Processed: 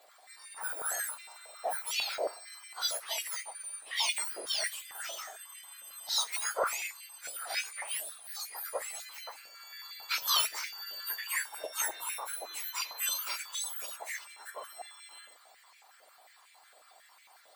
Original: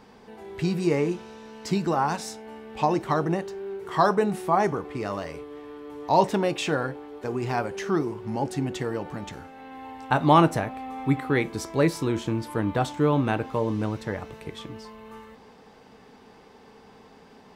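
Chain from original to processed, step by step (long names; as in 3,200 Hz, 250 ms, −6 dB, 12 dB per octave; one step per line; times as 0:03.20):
frequency axis turned over on the octave scale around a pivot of 1,900 Hz
high-pass on a step sequencer 11 Hz 580–2,200 Hz
level −5.5 dB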